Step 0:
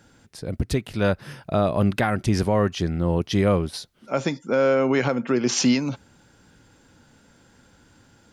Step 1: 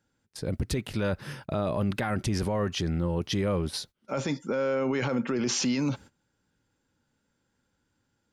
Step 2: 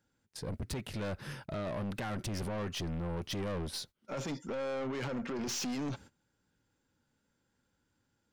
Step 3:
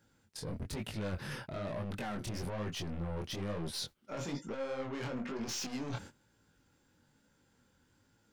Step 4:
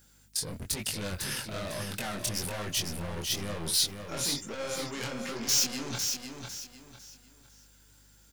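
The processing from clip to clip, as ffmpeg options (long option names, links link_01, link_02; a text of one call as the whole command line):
ffmpeg -i in.wav -af "alimiter=limit=-20dB:level=0:latency=1:release=14,bandreject=frequency=690:width=12,agate=range=-20dB:threshold=-45dB:ratio=16:detection=peak" out.wav
ffmpeg -i in.wav -af "aeval=exprs='(tanh(35.5*val(0)+0.2)-tanh(0.2))/35.5':channel_layout=same,volume=-2.5dB" out.wav
ffmpeg -i in.wav -af "areverse,acompressor=threshold=-45dB:ratio=6,areverse,flanger=delay=18:depth=7.5:speed=1.1,volume=10.5dB" out.wav
ffmpeg -i in.wav -af "aeval=exprs='val(0)+0.000631*(sin(2*PI*50*n/s)+sin(2*PI*2*50*n/s)/2+sin(2*PI*3*50*n/s)/3+sin(2*PI*4*50*n/s)/4+sin(2*PI*5*50*n/s)/5)':channel_layout=same,aecho=1:1:502|1004|1506|2008:0.501|0.155|0.0482|0.0149,crystalizer=i=6:c=0" out.wav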